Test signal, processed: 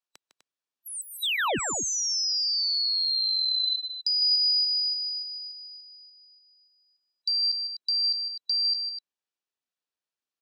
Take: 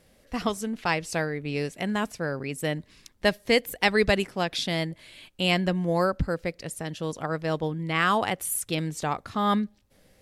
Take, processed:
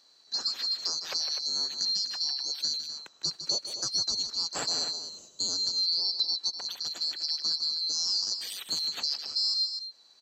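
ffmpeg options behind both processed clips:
-filter_complex "[0:a]afftfilt=real='real(if(lt(b,736),b+184*(1-2*mod(floor(b/184),2)),b),0)':imag='imag(if(lt(b,736),b+184*(1-2*mod(floor(b/184),2)),b),0)':win_size=2048:overlap=0.75,bandreject=f=2.1k:w=11,acrossover=split=200[a][b];[a]aemphasis=mode=production:type=bsi[c];[b]alimiter=limit=-15dB:level=0:latency=1:release=186[d];[c][d]amix=inputs=2:normalize=0,acompressor=threshold=-24dB:ratio=3,lowpass=6.2k,asplit=2[e][f];[f]aecho=0:1:154.5|250.7:0.316|0.316[g];[e][g]amix=inputs=2:normalize=0"

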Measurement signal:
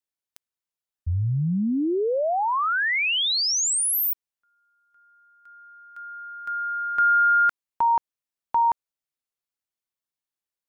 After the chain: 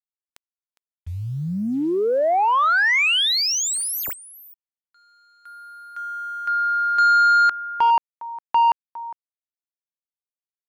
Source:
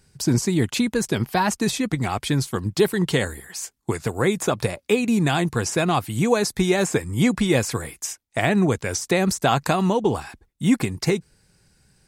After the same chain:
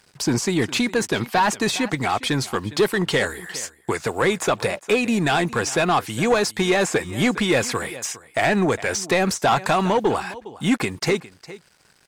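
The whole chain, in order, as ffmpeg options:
-filter_complex "[0:a]acrusher=bits=8:mix=0:aa=0.5,aecho=1:1:408:0.1,asplit=2[a][b];[b]highpass=f=720:p=1,volume=17dB,asoftclip=type=tanh:threshold=-6dB[c];[a][c]amix=inputs=2:normalize=0,lowpass=f=3.3k:p=1,volume=-6dB,volume=-2.5dB"

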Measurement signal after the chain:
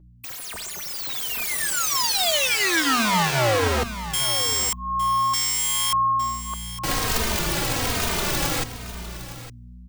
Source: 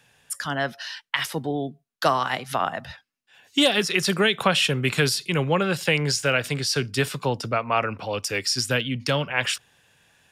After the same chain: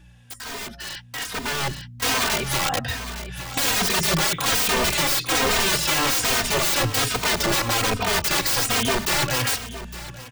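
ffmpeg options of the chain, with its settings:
-filter_complex "[0:a]asplit=2[a][b];[b]asoftclip=type=tanh:threshold=-19.5dB,volume=-5dB[c];[a][c]amix=inputs=2:normalize=0,aeval=exprs='val(0)+0.00708*(sin(2*PI*60*n/s)+sin(2*PI*2*60*n/s)/2+sin(2*PI*3*60*n/s)/3+sin(2*PI*4*60*n/s)/4+sin(2*PI*5*60*n/s)/5)':c=same,alimiter=limit=-12dB:level=0:latency=1:release=451,aeval=exprs='(mod(15.8*val(0)+1,2)-1)/15.8':c=same,equalizer=f=12k:t=o:w=0.7:g=-4.5,bandreject=f=50:t=h:w=6,bandreject=f=100:t=h:w=6,bandreject=f=150:t=h:w=6,bandreject=f=200:t=h:w=6,bandreject=f=250:t=h:w=6,bandreject=f=300:t=h:w=6,aecho=1:1:860:0.237,dynaudnorm=f=270:g=11:m=13dB,asplit=2[d][e];[e]adelay=3,afreqshift=-1.2[f];[d][f]amix=inputs=2:normalize=1,volume=-1.5dB"

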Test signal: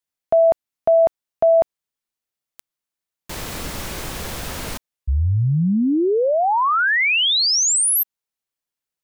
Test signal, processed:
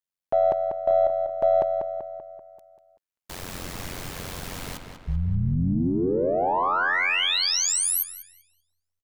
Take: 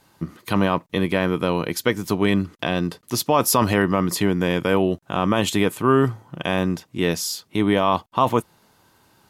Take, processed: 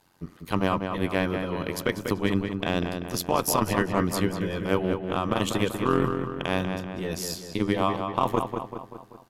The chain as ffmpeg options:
-filter_complex "[0:a]aeval=exprs='0.531*(cos(1*acos(clip(val(0)/0.531,-1,1)))-cos(1*PI/2))+0.00596*(cos(4*acos(clip(val(0)/0.531,-1,1)))-cos(4*PI/2))+0.0211*(cos(6*acos(clip(val(0)/0.531,-1,1)))-cos(6*PI/2))+0.00473*(cos(7*acos(clip(val(0)/0.531,-1,1)))-cos(7*PI/2))+0.0106*(cos(8*acos(clip(val(0)/0.531,-1,1)))-cos(8*PI/2))':c=same,tremolo=f=90:d=0.919,asplit=2[a][b];[b]adelay=193,lowpass=f=3.4k:p=1,volume=-6dB,asplit=2[c][d];[d]adelay=193,lowpass=f=3.4k:p=1,volume=0.54,asplit=2[e][f];[f]adelay=193,lowpass=f=3.4k:p=1,volume=0.54,asplit=2[g][h];[h]adelay=193,lowpass=f=3.4k:p=1,volume=0.54,asplit=2[i][j];[j]adelay=193,lowpass=f=3.4k:p=1,volume=0.54,asplit=2[k][l];[l]adelay=193,lowpass=f=3.4k:p=1,volume=0.54,asplit=2[m][n];[n]adelay=193,lowpass=f=3.4k:p=1,volume=0.54[o];[c][e][g][i][k][m][o]amix=inputs=7:normalize=0[p];[a][p]amix=inputs=2:normalize=0,volume=-2.5dB"

